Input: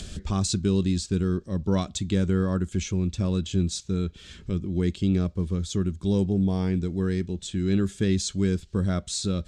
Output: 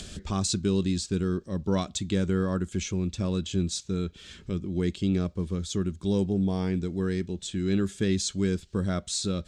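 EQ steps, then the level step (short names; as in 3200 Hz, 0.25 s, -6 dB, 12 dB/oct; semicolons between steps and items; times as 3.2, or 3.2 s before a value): low shelf 140 Hz -7 dB; 0.0 dB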